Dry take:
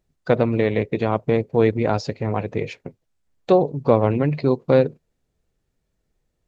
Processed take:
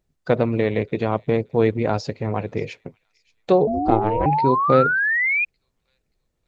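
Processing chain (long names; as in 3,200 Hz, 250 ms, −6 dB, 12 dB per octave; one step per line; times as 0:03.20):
delay with a high-pass on its return 578 ms, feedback 38%, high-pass 3,600 Hz, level −20 dB
0:03.60–0:05.45: sound drawn into the spectrogram rise 410–2,500 Hz −19 dBFS
0:03.67–0:04.26: ring modulation 220 Hz
level −1 dB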